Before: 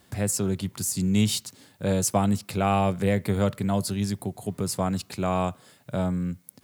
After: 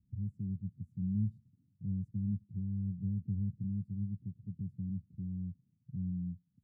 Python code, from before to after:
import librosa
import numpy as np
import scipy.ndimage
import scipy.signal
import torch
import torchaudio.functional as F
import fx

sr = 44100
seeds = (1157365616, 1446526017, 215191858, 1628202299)

y = scipy.signal.sosfilt(scipy.signal.cheby2(4, 60, 640.0, 'lowpass', fs=sr, output='sos'), x)
y = F.gain(torch.from_numpy(y), -7.5).numpy()